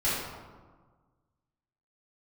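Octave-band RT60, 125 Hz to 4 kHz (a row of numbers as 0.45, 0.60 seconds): 1.9, 1.7, 1.5, 1.5, 1.0, 0.75 seconds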